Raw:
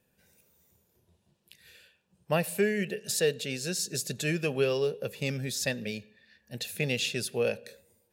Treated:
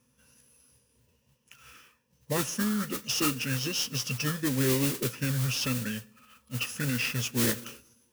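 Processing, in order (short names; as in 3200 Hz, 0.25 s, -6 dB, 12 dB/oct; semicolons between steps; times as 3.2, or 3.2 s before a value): ripple EQ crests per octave 1, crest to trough 15 dB; limiter -19 dBFS, peak gain reduction 8 dB; modulation noise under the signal 10 dB; formant shift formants -6 st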